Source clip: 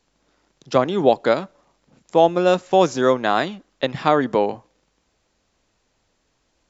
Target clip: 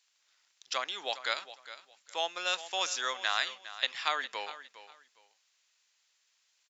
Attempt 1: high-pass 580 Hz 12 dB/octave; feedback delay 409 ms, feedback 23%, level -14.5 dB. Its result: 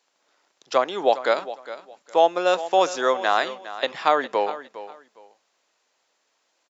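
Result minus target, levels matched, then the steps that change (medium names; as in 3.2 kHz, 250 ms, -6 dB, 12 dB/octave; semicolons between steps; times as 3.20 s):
500 Hz band +9.5 dB
change: high-pass 2.2 kHz 12 dB/octave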